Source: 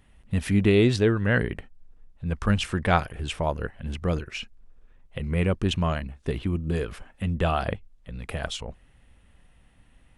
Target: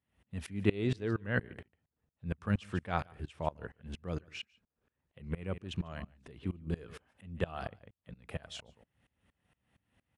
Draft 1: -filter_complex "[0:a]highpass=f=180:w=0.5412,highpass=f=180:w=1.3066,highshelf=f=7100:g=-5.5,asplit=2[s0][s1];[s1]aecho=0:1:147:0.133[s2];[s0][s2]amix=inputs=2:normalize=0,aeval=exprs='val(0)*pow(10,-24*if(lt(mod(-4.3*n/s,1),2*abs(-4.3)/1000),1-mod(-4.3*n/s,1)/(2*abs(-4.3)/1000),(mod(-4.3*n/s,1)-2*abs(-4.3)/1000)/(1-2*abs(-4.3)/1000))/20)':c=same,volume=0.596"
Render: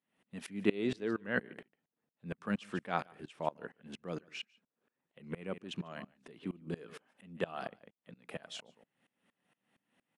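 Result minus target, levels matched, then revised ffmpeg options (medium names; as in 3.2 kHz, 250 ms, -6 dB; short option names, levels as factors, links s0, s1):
125 Hz band -7.5 dB
-filter_complex "[0:a]highpass=f=73:w=0.5412,highpass=f=73:w=1.3066,highshelf=f=7100:g=-5.5,asplit=2[s0][s1];[s1]aecho=0:1:147:0.133[s2];[s0][s2]amix=inputs=2:normalize=0,aeval=exprs='val(0)*pow(10,-24*if(lt(mod(-4.3*n/s,1),2*abs(-4.3)/1000),1-mod(-4.3*n/s,1)/(2*abs(-4.3)/1000),(mod(-4.3*n/s,1)-2*abs(-4.3)/1000)/(1-2*abs(-4.3)/1000))/20)':c=same,volume=0.596"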